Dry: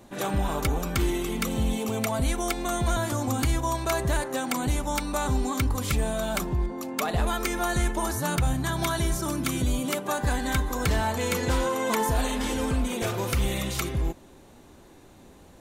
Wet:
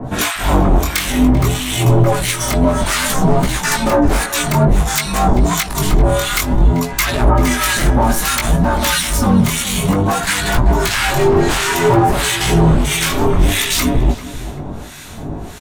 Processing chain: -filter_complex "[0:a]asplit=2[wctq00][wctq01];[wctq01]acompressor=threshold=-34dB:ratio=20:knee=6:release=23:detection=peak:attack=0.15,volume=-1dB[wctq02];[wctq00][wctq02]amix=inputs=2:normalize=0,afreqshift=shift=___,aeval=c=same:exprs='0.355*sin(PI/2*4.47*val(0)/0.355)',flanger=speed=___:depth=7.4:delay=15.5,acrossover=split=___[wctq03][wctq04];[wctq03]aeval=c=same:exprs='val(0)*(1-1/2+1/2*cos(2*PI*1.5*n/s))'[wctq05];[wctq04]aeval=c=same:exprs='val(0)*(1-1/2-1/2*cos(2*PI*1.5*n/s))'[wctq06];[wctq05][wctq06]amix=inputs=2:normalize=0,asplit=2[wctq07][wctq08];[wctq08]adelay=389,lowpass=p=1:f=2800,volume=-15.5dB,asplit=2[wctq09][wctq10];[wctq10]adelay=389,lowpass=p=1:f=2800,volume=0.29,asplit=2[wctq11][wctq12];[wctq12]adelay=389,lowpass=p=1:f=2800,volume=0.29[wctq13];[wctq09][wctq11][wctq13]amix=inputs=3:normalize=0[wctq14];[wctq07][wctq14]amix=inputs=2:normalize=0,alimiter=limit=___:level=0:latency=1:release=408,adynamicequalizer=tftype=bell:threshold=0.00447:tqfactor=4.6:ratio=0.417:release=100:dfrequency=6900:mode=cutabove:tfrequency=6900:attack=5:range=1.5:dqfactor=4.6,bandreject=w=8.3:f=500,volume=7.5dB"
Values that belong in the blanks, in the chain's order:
-99, 0.57, 1200, -11.5dB